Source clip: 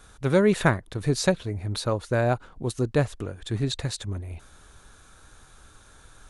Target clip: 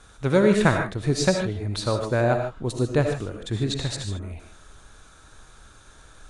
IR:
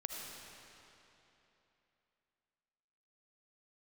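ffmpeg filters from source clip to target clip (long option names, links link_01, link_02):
-filter_complex "[0:a]lowpass=frequency=9500:width=0.5412,lowpass=frequency=9500:width=1.3066[link_01];[1:a]atrim=start_sample=2205,afade=type=out:start_time=0.21:duration=0.01,atrim=end_sample=9702[link_02];[link_01][link_02]afir=irnorm=-1:irlink=0,volume=4dB"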